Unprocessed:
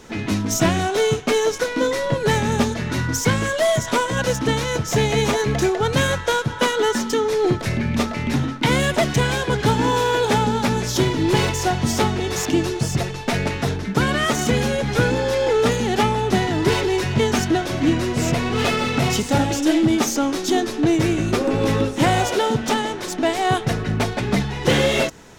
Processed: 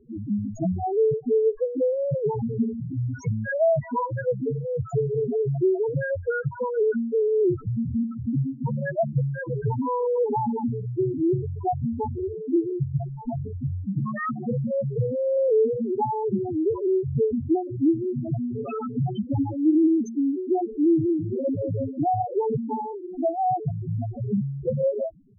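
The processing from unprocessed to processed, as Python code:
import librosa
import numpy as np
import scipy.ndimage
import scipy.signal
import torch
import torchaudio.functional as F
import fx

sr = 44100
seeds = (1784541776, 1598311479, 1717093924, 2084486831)

y = fx.self_delay(x, sr, depth_ms=0.11)
y = fx.spec_topn(y, sr, count=2)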